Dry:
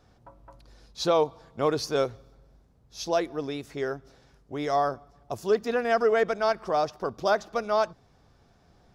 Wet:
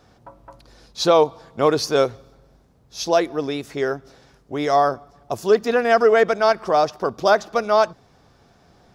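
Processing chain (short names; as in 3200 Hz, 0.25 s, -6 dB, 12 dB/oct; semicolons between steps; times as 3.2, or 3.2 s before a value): low shelf 82 Hz -9.5 dB; gain +8 dB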